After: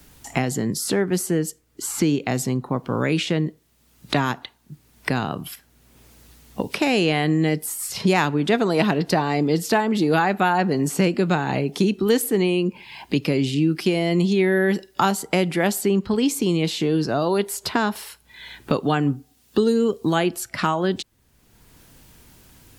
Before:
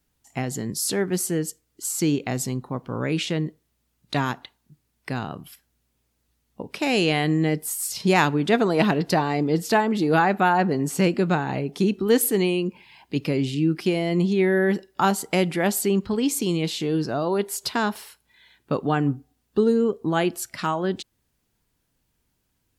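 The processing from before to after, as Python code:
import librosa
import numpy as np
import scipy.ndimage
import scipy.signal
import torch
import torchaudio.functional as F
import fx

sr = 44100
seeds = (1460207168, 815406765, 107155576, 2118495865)

y = fx.band_squash(x, sr, depth_pct=70)
y = y * librosa.db_to_amplitude(1.5)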